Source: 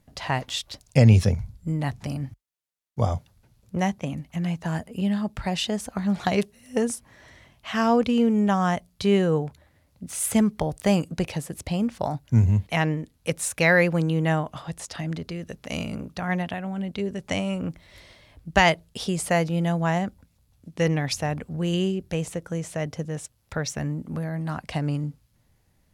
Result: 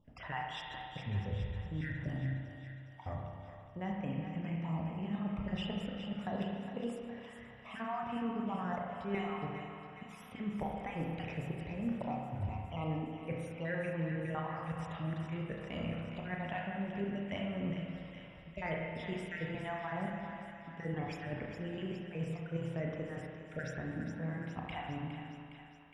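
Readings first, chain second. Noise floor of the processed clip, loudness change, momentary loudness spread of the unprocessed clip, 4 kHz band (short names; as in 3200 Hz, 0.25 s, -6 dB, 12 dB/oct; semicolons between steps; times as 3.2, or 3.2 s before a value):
-53 dBFS, -14.5 dB, 13 LU, -16.5 dB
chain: random spectral dropouts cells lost 38%; reverse; compressor 12:1, threshold -31 dBFS, peak gain reduction 20.5 dB; reverse; polynomial smoothing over 25 samples; thinning echo 0.412 s, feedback 66%, high-pass 750 Hz, level -8 dB; spring tank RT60 1.9 s, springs 30/38 ms, chirp 65 ms, DRR -1 dB; gain -5.5 dB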